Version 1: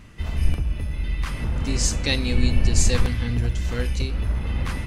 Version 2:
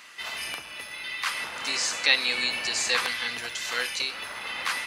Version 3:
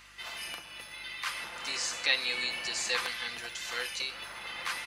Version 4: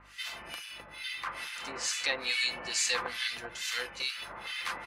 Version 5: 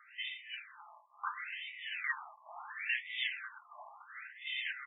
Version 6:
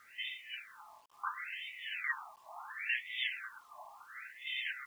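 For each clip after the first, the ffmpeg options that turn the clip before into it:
-filter_complex "[0:a]highpass=1.1k,acrossover=split=3000[a][b];[b]acompressor=threshold=-37dB:ratio=4:attack=1:release=60[c];[a][c]amix=inputs=2:normalize=0,equalizer=f=4.3k:w=2.8:g=3.5,volume=8dB"
-af "aecho=1:1:5.8:0.33,aeval=exprs='val(0)+0.00126*(sin(2*PI*50*n/s)+sin(2*PI*2*50*n/s)/2+sin(2*PI*3*50*n/s)/3+sin(2*PI*4*50*n/s)/4+sin(2*PI*5*50*n/s)/5)':c=same,volume=-6.5dB"
-filter_complex "[0:a]acrossover=split=1500[a][b];[a]aeval=exprs='val(0)*(1-1/2+1/2*cos(2*PI*2.3*n/s))':c=same[c];[b]aeval=exprs='val(0)*(1-1/2-1/2*cos(2*PI*2.3*n/s))':c=same[d];[c][d]amix=inputs=2:normalize=0,volume=5.5dB"
-af "afftfilt=real='re*between(b*sr/1024,820*pow(2700/820,0.5+0.5*sin(2*PI*0.72*pts/sr))/1.41,820*pow(2700/820,0.5+0.5*sin(2*PI*0.72*pts/sr))*1.41)':imag='im*between(b*sr/1024,820*pow(2700/820,0.5+0.5*sin(2*PI*0.72*pts/sr))/1.41,820*pow(2700/820,0.5+0.5*sin(2*PI*0.72*pts/sr))*1.41)':win_size=1024:overlap=0.75"
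-af "acrusher=bits=10:mix=0:aa=0.000001"

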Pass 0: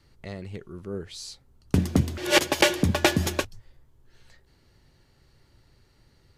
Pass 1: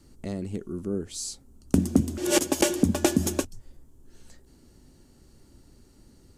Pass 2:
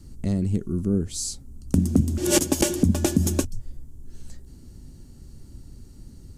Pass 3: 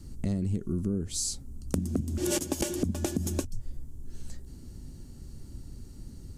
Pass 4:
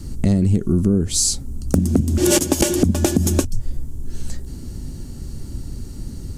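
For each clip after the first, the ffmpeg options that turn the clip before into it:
-af "equalizer=f=125:t=o:w=1:g=-7,equalizer=f=250:t=o:w=1:g=9,equalizer=f=500:t=o:w=1:g=-3,equalizer=f=1k:t=o:w=1:g=-4,equalizer=f=2k:t=o:w=1:g=-9,equalizer=f=4k:t=o:w=1:g=-7,equalizer=f=8k:t=o:w=1:g=7,acompressor=threshold=-36dB:ratio=1.5,volume=6dB"
-af "bass=f=250:g=13,treble=f=4k:g=5,alimiter=limit=-7dB:level=0:latency=1:release=276"
-af "acompressor=threshold=-26dB:ratio=6"
-af "aeval=exprs='0.355*sin(PI/2*1.58*val(0)/0.355)':c=same,volume=5.5dB"

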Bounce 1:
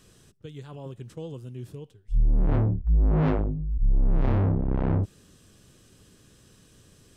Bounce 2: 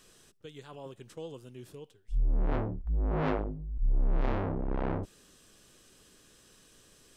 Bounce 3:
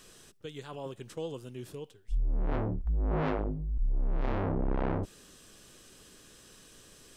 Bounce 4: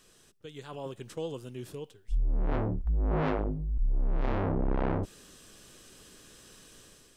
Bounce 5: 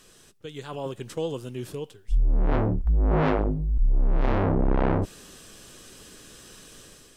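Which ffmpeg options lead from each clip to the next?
-af "equalizer=f=100:t=o:w=2.6:g=-13.5"
-af "acompressor=threshold=-30dB:ratio=6,volume=4.5dB"
-af "dynaudnorm=f=380:g=3:m=7.5dB,volume=-6dB"
-af "volume=6.5dB" -ar 44100 -c:a aac -b:a 96k

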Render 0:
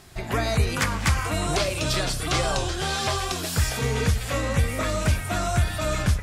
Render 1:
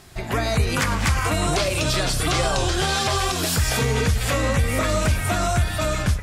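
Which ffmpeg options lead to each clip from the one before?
-af "dynaudnorm=f=170:g=9:m=12dB,alimiter=limit=-14dB:level=0:latency=1:release=267,volume=2dB"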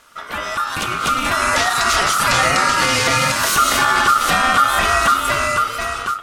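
-af "dynaudnorm=f=270:g=9:m=9.5dB,aeval=exprs='val(0)*sin(2*PI*1300*n/s)':c=same"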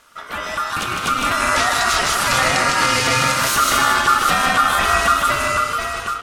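-af "aecho=1:1:155:0.596,volume=-2dB"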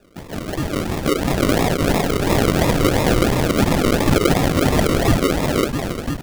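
-af "acrusher=samples=41:mix=1:aa=0.000001:lfo=1:lforange=24.6:lforate=2.9"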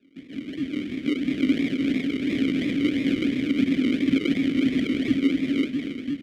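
-filter_complex "[0:a]asplit=3[a][b][c];[a]bandpass=f=270:t=q:w=8,volume=0dB[d];[b]bandpass=f=2.29k:t=q:w=8,volume=-6dB[e];[c]bandpass=f=3.01k:t=q:w=8,volume=-9dB[f];[d][e][f]amix=inputs=3:normalize=0,aecho=1:1:238:0.224,volume=3.5dB"

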